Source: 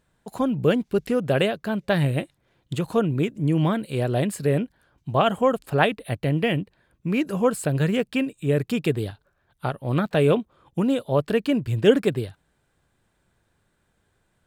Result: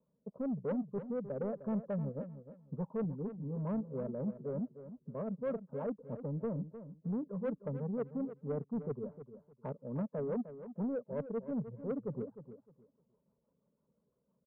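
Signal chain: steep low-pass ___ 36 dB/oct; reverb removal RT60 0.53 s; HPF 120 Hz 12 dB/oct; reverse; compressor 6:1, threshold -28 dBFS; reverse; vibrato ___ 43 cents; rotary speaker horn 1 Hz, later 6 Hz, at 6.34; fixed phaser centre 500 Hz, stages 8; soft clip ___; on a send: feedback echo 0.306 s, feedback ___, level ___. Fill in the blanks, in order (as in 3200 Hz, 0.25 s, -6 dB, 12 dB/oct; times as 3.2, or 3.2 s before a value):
940 Hz, 2.6 Hz, -29.5 dBFS, 22%, -12 dB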